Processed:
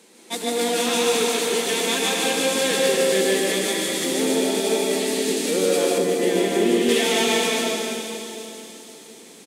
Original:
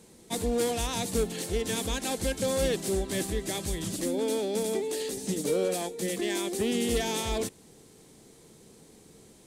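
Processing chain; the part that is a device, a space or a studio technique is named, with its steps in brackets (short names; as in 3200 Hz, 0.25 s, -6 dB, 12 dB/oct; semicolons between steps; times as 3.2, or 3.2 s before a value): 1.02–1.49 HPF 260 Hz; stadium PA (HPF 220 Hz 24 dB/oct; bell 2500 Hz +7 dB 2.2 oct; loudspeakers at several distances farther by 51 m -2 dB, 85 m -10 dB; reverb RT60 3.2 s, pre-delay 0.103 s, DRR -1.5 dB); 5.98–6.89 tilt shelf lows +6.5 dB, about 630 Hz; thin delay 0.489 s, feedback 52%, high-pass 5100 Hz, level -8.5 dB; gain +1.5 dB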